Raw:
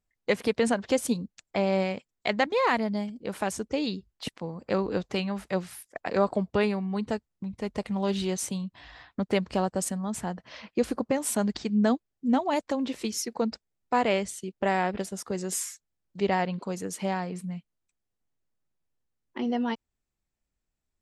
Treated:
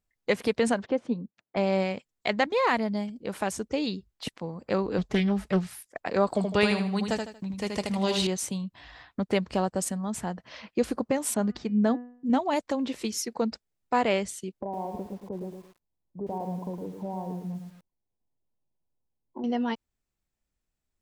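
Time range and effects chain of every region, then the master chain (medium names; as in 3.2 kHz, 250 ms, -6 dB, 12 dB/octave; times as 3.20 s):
0.86–1.57 s: high-pass 150 Hz + tape spacing loss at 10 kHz 41 dB
4.98–5.67 s: bass shelf 170 Hz +10 dB + comb 4.7 ms, depth 34% + loudspeaker Doppler distortion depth 0.29 ms
6.27–8.27 s: treble shelf 2.3 kHz +11 dB + feedback delay 78 ms, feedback 32%, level -5 dB
11.34–12.30 s: low-pass 8 kHz 24 dB/octave + treble shelf 2.2 kHz -8 dB + de-hum 244.8 Hz, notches 12
14.61–19.44 s: brick-wall FIR low-pass 1.1 kHz + compression 3:1, threshold -32 dBFS + bit-crushed delay 111 ms, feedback 35%, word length 9-bit, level -6 dB
whole clip: none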